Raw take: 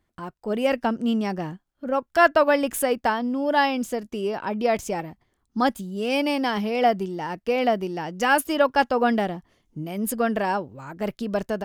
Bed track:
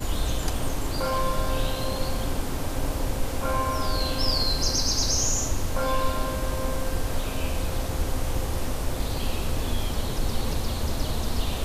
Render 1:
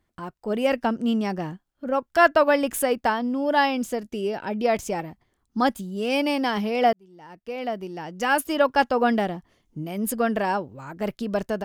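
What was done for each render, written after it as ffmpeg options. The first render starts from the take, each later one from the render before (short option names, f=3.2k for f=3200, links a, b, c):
-filter_complex "[0:a]asettb=1/sr,asplit=3[a][b][c];[a]atrim=end=4.084[d];[b]atrim=start=4.08:end=4.64,asetpts=PTS-STARTPTS,afade=t=in:d=0.004:c=qsin,afade=t=out:st=0.556:d=0.004:c=qsin,equalizer=f=1.1k:w=4.4:g=-12[e];[c]atrim=start=4.636[f];[d][e]acrossfade=d=0.004:c1=hsin:c2=qsin[g];[g][f]acrossfade=d=0.004:c1=qsin:c2=hsin,asplit=2[h][i];[h]atrim=end=6.93,asetpts=PTS-STARTPTS,afade=t=out:st=6.926:d=0.004:c=hsin[j];[i]atrim=start=6.93,asetpts=PTS-STARTPTS,afade=t=in:d=1.77[k];[j][k]concat=n=2:v=0:a=1"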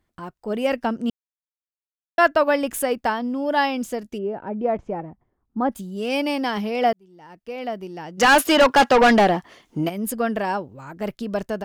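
-filter_complex "[0:a]asplit=3[a][b][c];[a]afade=t=out:st=4.17:d=0.02[d];[b]lowpass=1.1k,afade=t=in:st=4.17:d=0.02,afade=t=out:st=5.71:d=0.02[e];[c]afade=t=in:st=5.71:d=0.02[f];[d][e][f]amix=inputs=3:normalize=0,asplit=3[g][h][i];[g]afade=t=out:st=8.17:d=0.02[j];[h]asplit=2[k][l];[l]highpass=f=720:p=1,volume=25dB,asoftclip=type=tanh:threshold=-6.5dB[m];[k][m]amix=inputs=2:normalize=0,lowpass=f=4.4k:p=1,volume=-6dB,afade=t=in:st=8.17:d=0.02,afade=t=out:st=9.88:d=0.02[n];[i]afade=t=in:st=9.88:d=0.02[o];[j][n][o]amix=inputs=3:normalize=0,asplit=3[p][q][r];[p]atrim=end=1.1,asetpts=PTS-STARTPTS,afade=t=out:st=1.096:d=0.004:c=hsin[s];[q]atrim=start=1.1:end=2.18,asetpts=PTS-STARTPTS,volume=0[t];[r]atrim=start=2.18,asetpts=PTS-STARTPTS,afade=t=in:d=0.004:c=hsin[u];[s][t][u]concat=n=3:v=0:a=1"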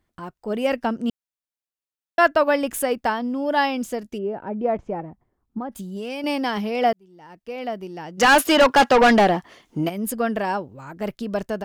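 -filter_complex "[0:a]asettb=1/sr,asplit=3[a][b][c];[a]atrim=end=5.584[d];[b]atrim=start=5.58:end=6.24,asetpts=PTS-STARTPTS,afade=t=in:d=0.004:c=qsin,afade=t=out:st=0.656:d=0.004:c=qsin,acompressor=threshold=-26dB:ratio=10:attack=3.2:release=140:knee=1:detection=peak[e];[c]atrim=start=6.236[f];[d][e]acrossfade=d=0.004:c1=hsin:c2=qsin[g];[g][f]acrossfade=d=0.004:c1=qsin:c2=hsin"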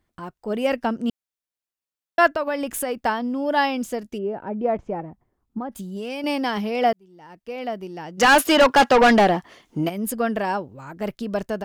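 -filter_complex "[0:a]asettb=1/sr,asplit=3[a][b][c];[a]atrim=end=2.324[d];[b]atrim=start=2.32:end=3.05,asetpts=PTS-STARTPTS,afade=t=in:d=0.004:c=qsin,afade=t=out:st=0.726:d=0.004:c=qsin,acompressor=threshold=-23dB:ratio=2.5:attack=3.2:release=140:knee=1:detection=peak[e];[c]atrim=start=3.046[f];[d][e]acrossfade=d=0.004:c1=hsin:c2=qsin[g];[g][f]acrossfade=d=0.004:c1=qsin:c2=hsin"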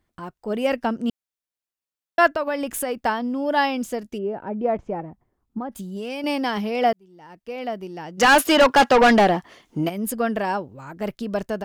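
-af anull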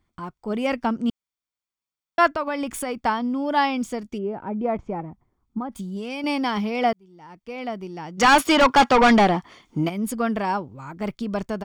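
-af "equalizer=f=13k:w=1.3:g=-11,aecho=1:1:0.9:0.36"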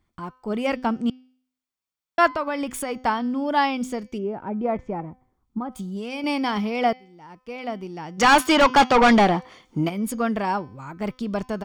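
-af "bandreject=f=255.2:t=h:w=4,bandreject=f=510.4:t=h:w=4,bandreject=f=765.6:t=h:w=4,bandreject=f=1.0208k:t=h:w=4,bandreject=f=1.276k:t=h:w=4,bandreject=f=1.5312k:t=h:w=4,bandreject=f=1.7864k:t=h:w=4,bandreject=f=2.0416k:t=h:w=4,bandreject=f=2.2968k:t=h:w=4,bandreject=f=2.552k:t=h:w=4,bandreject=f=2.8072k:t=h:w=4,bandreject=f=3.0624k:t=h:w=4,bandreject=f=3.3176k:t=h:w=4,bandreject=f=3.5728k:t=h:w=4,bandreject=f=3.828k:t=h:w=4,bandreject=f=4.0832k:t=h:w=4,bandreject=f=4.3384k:t=h:w=4,bandreject=f=4.5936k:t=h:w=4,bandreject=f=4.8488k:t=h:w=4,bandreject=f=5.104k:t=h:w=4,bandreject=f=5.3592k:t=h:w=4,bandreject=f=5.6144k:t=h:w=4,bandreject=f=5.8696k:t=h:w=4,bandreject=f=6.1248k:t=h:w=4,bandreject=f=6.38k:t=h:w=4,bandreject=f=6.6352k:t=h:w=4"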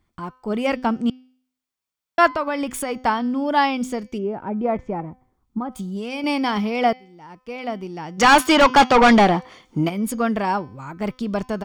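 -af "volume=2.5dB"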